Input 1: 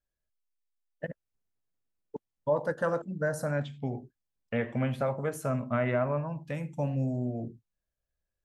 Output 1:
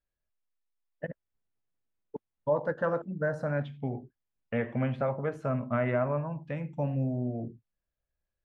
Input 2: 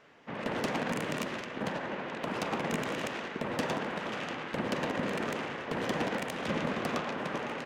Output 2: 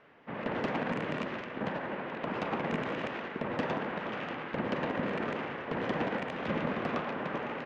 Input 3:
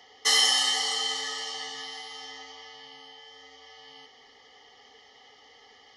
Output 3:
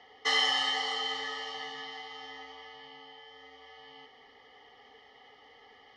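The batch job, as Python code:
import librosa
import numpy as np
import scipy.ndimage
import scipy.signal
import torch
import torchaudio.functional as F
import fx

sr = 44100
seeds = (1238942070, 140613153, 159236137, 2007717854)

y = scipy.signal.sosfilt(scipy.signal.butter(2, 2700.0, 'lowpass', fs=sr, output='sos'), x)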